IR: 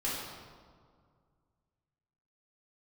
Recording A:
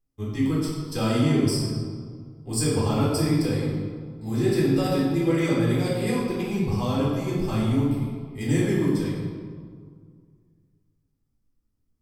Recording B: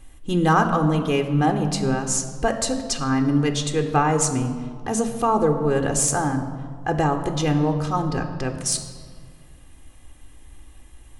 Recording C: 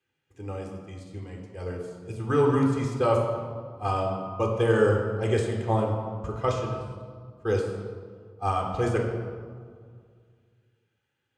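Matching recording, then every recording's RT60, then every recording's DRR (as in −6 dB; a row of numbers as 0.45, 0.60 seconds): A; 2.0, 2.0, 2.0 seconds; −7.0, 7.0, 0.5 decibels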